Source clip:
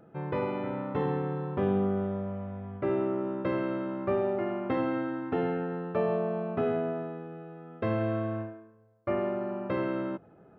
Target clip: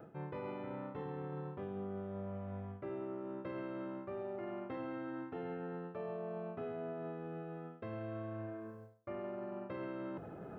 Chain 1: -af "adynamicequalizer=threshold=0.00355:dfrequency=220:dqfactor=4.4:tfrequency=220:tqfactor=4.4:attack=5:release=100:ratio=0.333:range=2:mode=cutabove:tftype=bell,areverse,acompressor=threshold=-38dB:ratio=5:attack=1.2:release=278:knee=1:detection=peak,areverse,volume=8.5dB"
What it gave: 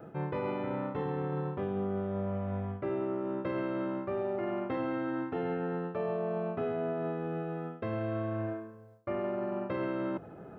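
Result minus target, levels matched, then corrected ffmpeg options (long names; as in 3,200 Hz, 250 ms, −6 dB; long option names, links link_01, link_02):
downward compressor: peak gain reduction −9 dB
-af "adynamicequalizer=threshold=0.00355:dfrequency=220:dqfactor=4.4:tfrequency=220:tqfactor=4.4:attack=5:release=100:ratio=0.333:range=2:mode=cutabove:tftype=bell,areverse,acompressor=threshold=-49.5dB:ratio=5:attack=1.2:release=278:knee=1:detection=peak,areverse,volume=8.5dB"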